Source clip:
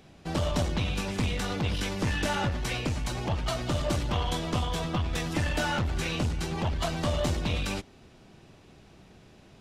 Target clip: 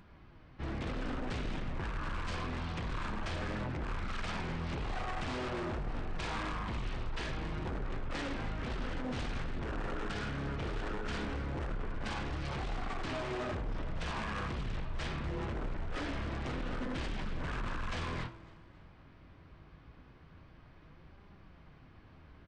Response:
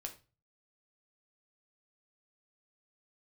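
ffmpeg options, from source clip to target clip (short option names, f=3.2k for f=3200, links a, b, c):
-filter_complex "[0:a]flanger=delay=2.1:depth=7.4:regen=65:speed=0.55:shape=sinusoidal,alimiter=level_in=3.5dB:limit=-24dB:level=0:latency=1:release=24,volume=-3.5dB,aeval=exprs='0.02*(abs(mod(val(0)/0.02+3,4)-2)-1)':c=same,bandreject=f=111:t=h:w=4,bandreject=f=222:t=h:w=4,bandreject=f=333:t=h:w=4,bandreject=f=444:t=h:w=4,bandreject=f=555:t=h:w=4,bandreject=f=666:t=h:w=4,bandreject=f=777:t=h:w=4,bandreject=f=888:t=h:w=4,bandreject=f=999:t=h:w=4,bandreject=f=1.11k:t=h:w=4,bandreject=f=1.221k:t=h:w=4,bandreject=f=1.332k:t=h:w=4,bandreject=f=1.443k:t=h:w=4,bandreject=f=1.554k:t=h:w=4,bandreject=f=1.665k:t=h:w=4,bandreject=f=1.776k:t=h:w=4,bandreject=f=1.887k:t=h:w=4,bandreject=f=1.998k:t=h:w=4,bandreject=f=2.109k:t=h:w=4,bandreject=f=2.22k:t=h:w=4,bandreject=f=2.331k:t=h:w=4,bandreject=f=2.442k:t=h:w=4,bandreject=f=2.553k:t=h:w=4,bandreject=f=2.664k:t=h:w=4,bandreject=f=2.775k:t=h:w=4,bandreject=f=2.886k:t=h:w=4,bandreject=f=2.997k:t=h:w=4,bandreject=f=3.108k:t=h:w=4,bandreject=f=3.219k:t=h:w=4,bandreject=f=3.33k:t=h:w=4,bandreject=f=3.441k:t=h:w=4,asplit=4[a][b][c][d];[b]adelay=117,afreqshift=-80,volume=-21dB[e];[c]adelay=234,afreqshift=-160,volume=-29dB[f];[d]adelay=351,afreqshift=-240,volume=-36.9dB[g];[a][e][f][g]amix=inputs=4:normalize=0,asetrate=18846,aresample=44100,volume=2.5dB"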